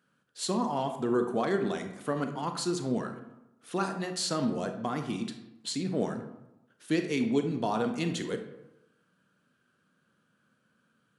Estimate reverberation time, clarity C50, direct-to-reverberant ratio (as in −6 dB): 0.95 s, 8.0 dB, 6.0 dB